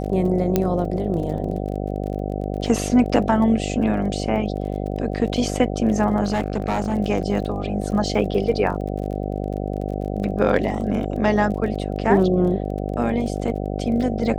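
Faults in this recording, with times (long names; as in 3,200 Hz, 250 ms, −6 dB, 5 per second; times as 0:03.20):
mains buzz 50 Hz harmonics 15 −26 dBFS
surface crackle 28 per second −31 dBFS
0:00.56: click −5 dBFS
0:06.23–0:06.95: clipping −16.5 dBFS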